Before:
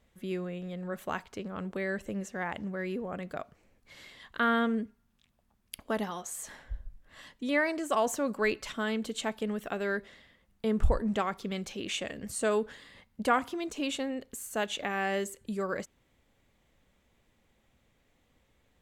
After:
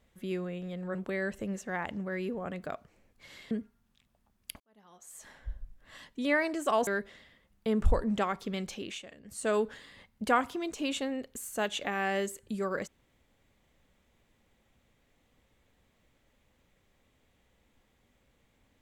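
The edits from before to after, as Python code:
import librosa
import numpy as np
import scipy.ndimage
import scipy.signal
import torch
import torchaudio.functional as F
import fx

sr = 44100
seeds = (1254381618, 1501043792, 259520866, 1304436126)

y = fx.edit(x, sr, fx.cut(start_s=0.95, length_s=0.67),
    fx.cut(start_s=4.18, length_s=0.57),
    fx.fade_in_span(start_s=5.84, length_s=0.92, curve='qua'),
    fx.cut(start_s=8.11, length_s=1.74),
    fx.fade_down_up(start_s=11.72, length_s=0.8, db=-12.5, fade_s=0.29), tone=tone)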